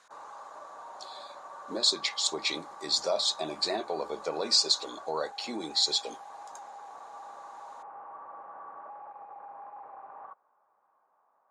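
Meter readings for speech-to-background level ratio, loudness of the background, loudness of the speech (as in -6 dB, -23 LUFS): 17.5 dB, -46.0 LUFS, -28.5 LUFS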